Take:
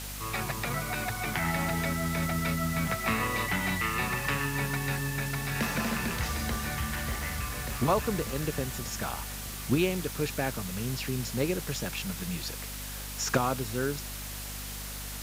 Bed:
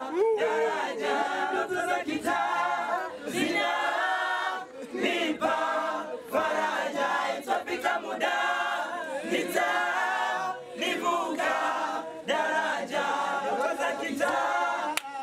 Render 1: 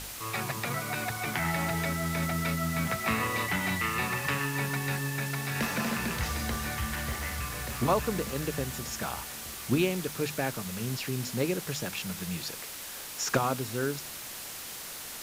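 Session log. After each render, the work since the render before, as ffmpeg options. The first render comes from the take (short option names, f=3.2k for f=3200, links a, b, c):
-af "bandreject=f=50:t=h:w=4,bandreject=f=100:t=h:w=4,bandreject=f=150:t=h:w=4,bandreject=f=200:t=h:w=4,bandreject=f=250:t=h:w=4"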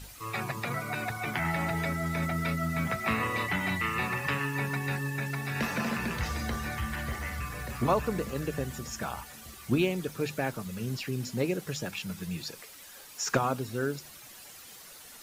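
-af "afftdn=nr=11:nf=-41"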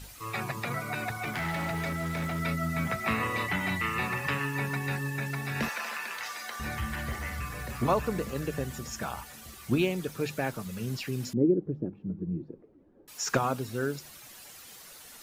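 -filter_complex "[0:a]asettb=1/sr,asplit=3[a][b][c];[a]atrim=end=1.124[d];[b]atrim=start=1.12:end=2.4,asetpts=PTS-STARTPTS,afade=t=in:d=0.004:c=qsin,afade=t=out:st=1.276:d=0.004:c=qsin,asoftclip=type=hard:threshold=-28dB[e];[c]atrim=start=2.396[f];[d][e]acrossfade=d=0.004:c1=hsin:c2=qsin[g];[g][f]acrossfade=d=0.004:c1=qsin:c2=hsin,asettb=1/sr,asplit=3[h][i][j];[h]atrim=end=5.694[k];[i]atrim=start=5.69:end=6.6,asetpts=PTS-STARTPTS,afade=t=in:d=0.004:c=qsin,afade=t=out:st=0.906:d=0.004:c=qsin,highpass=870[l];[j]atrim=start=6.596[m];[k][l]acrossfade=d=0.004:c1=hsin:c2=qsin[n];[n][m]acrossfade=d=0.004:c1=qsin:c2=hsin,asettb=1/sr,asplit=3[o][p][q];[o]atrim=end=11.334[r];[p]atrim=start=11.33:end=13.08,asetpts=PTS-STARTPTS,afade=t=in:d=0.004:c=qsin,afade=t=out:st=1.746:d=0.004:c=qsin,lowpass=f=330:t=q:w=3.3[s];[q]atrim=start=13.076[t];[r][s]acrossfade=d=0.004:c1=hsin:c2=qsin[u];[u][t]acrossfade=d=0.004:c1=qsin:c2=hsin"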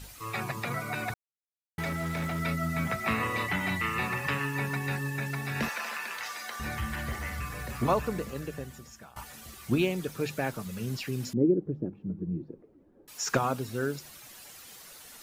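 -filter_complex "[0:a]asplit=4[a][b][c][d];[a]atrim=end=1.14,asetpts=PTS-STARTPTS,afade=t=out:st=1.136:d=0.004:c=hsin[e];[b]atrim=start=1.14:end=1.78,asetpts=PTS-STARTPTS,volume=0[f];[c]atrim=start=1.78:end=9.16,asetpts=PTS-STARTPTS,afade=t=in:d=0.004:c=hsin,afade=t=out:st=6.15:d=1.23:silence=0.0891251[g];[d]atrim=start=9.16,asetpts=PTS-STARTPTS,afade=t=in:d=0.004:c=hsin:silence=0.0891251[h];[e][f][g][h]concat=n=4:v=0:a=1"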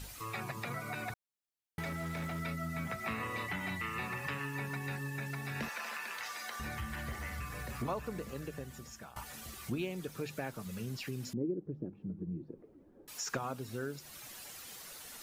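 -af "acompressor=threshold=-42dB:ratio=2"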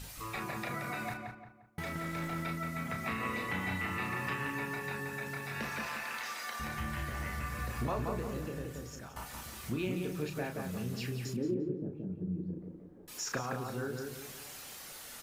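-filter_complex "[0:a]asplit=2[a][b];[b]adelay=33,volume=-6dB[c];[a][c]amix=inputs=2:normalize=0,asplit=2[d][e];[e]adelay=175,lowpass=f=2k:p=1,volume=-3dB,asplit=2[f][g];[g]adelay=175,lowpass=f=2k:p=1,volume=0.4,asplit=2[h][i];[i]adelay=175,lowpass=f=2k:p=1,volume=0.4,asplit=2[j][k];[k]adelay=175,lowpass=f=2k:p=1,volume=0.4,asplit=2[l][m];[m]adelay=175,lowpass=f=2k:p=1,volume=0.4[n];[d][f][h][j][l][n]amix=inputs=6:normalize=0"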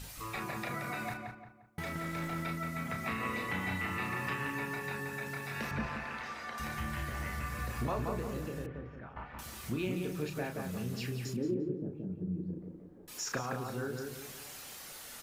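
-filter_complex "[0:a]asettb=1/sr,asplit=3[a][b][c];[a]atrim=end=5.714[d];[b]atrim=start=5.71:end=6.58,asetpts=PTS-STARTPTS,afade=t=in:d=0.004:c=qsin,afade=t=out:st=0.866:d=0.004:c=qsin,aemphasis=mode=reproduction:type=riaa[e];[c]atrim=start=6.576[f];[d][e]acrossfade=d=0.004:c1=hsin:c2=qsin[g];[g][f]acrossfade=d=0.004:c1=qsin:c2=hsin,asettb=1/sr,asplit=3[h][i][j];[h]atrim=end=8.664[k];[i]atrim=start=8.66:end=9.39,asetpts=PTS-STARTPTS,afade=t=in:d=0.004:c=qsin,afade=t=out:st=0.726:d=0.004:c=qsin,lowpass=f=2.4k:w=0.5412,lowpass=f=2.4k:w=1.3066[l];[j]atrim=start=9.386[m];[k][l]acrossfade=d=0.004:c1=hsin:c2=qsin[n];[n][m]acrossfade=d=0.004:c1=qsin:c2=hsin"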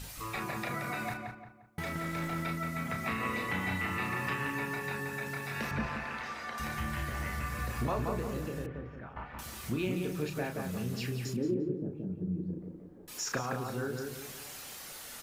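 -af "volume=2dB"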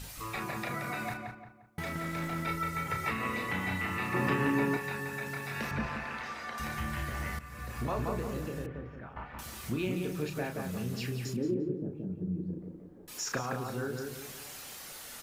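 -filter_complex "[0:a]asettb=1/sr,asplit=3[a][b][c];[a]atrim=end=2.474[d];[b]atrim=start=2.47:end=3.11,asetpts=PTS-STARTPTS,afade=t=in:d=0.004:c=qsin,afade=t=out:st=0.636:d=0.004:c=qsin,aecho=1:1:2.2:0.92,atrim=end_sample=28224[e];[c]atrim=start=3.106[f];[d][e]acrossfade=d=0.004:c1=hsin:c2=qsin[g];[g][f]acrossfade=d=0.004:c1=qsin:c2=hsin,asettb=1/sr,asplit=3[h][i][j];[h]atrim=end=4.144[k];[i]atrim=start=4.14:end=4.77,asetpts=PTS-STARTPTS,afade=t=in:d=0.004:c=qsin,afade=t=out:st=0.626:d=0.004:c=qsin,equalizer=f=300:w=0.47:g=11[l];[j]atrim=start=4.766[m];[k][l]acrossfade=d=0.004:c1=hsin:c2=qsin[n];[n][m]acrossfade=d=0.004:c1=qsin:c2=hsin,asplit=2[o][p];[o]atrim=end=7.39,asetpts=PTS-STARTPTS,afade=t=out:st=7.386:d=0.004:c=hsin:silence=0.199526[q];[p]atrim=start=7.39,asetpts=PTS-STARTPTS,afade=t=in:d=0.61:silence=0.199526[r];[q][r]concat=n=2:v=0:a=1"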